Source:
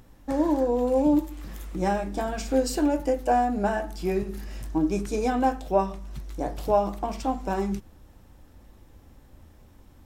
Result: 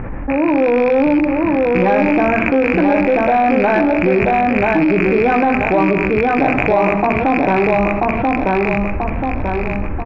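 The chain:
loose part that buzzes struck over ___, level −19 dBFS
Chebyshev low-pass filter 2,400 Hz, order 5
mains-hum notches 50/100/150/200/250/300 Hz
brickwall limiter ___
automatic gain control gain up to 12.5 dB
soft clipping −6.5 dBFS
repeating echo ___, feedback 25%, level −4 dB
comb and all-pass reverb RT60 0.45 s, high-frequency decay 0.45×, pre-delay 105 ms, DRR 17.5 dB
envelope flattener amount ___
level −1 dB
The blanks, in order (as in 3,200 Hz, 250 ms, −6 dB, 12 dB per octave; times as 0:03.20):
−32 dBFS, −17 dBFS, 986 ms, 70%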